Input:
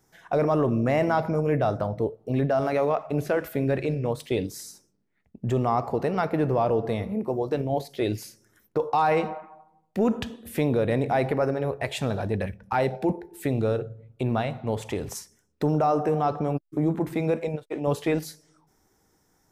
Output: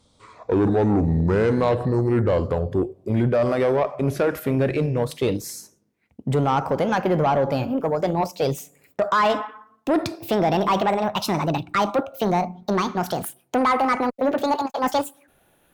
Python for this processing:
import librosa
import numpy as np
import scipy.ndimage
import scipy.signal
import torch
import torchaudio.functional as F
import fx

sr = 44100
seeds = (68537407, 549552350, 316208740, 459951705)

y = fx.speed_glide(x, sr, from_pct=62, to_pct=186)
y = fx.cheby_harmonics(y, sr, harmonics=(5,), levels_db=(-20,), full_scale_db=-11.5)
y = F.gain(torch.from_numpy(y), 2.0).numpy()